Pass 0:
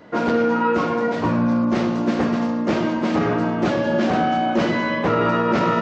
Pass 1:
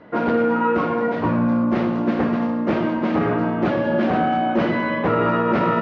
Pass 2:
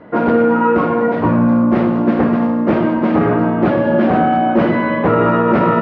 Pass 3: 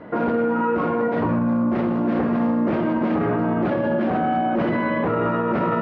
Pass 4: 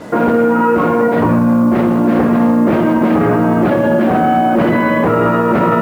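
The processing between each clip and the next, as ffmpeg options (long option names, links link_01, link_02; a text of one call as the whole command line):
ffmpeg -i in.wav -af "lowpass=2700" out.wav
ffmpeg -i in.wav -af "highshelf=frequency=3000:gain=-11.5,volume=6.5dB" out.wav
ffmpeg -i in.wav -af "alimiter=limit=-14dB:level=0:latency=1:release=60" out.wav
ffmpeg -i in.wav -af "acrusher=bits=7:mix=0:aa=0.5,volume=9dB" out.wav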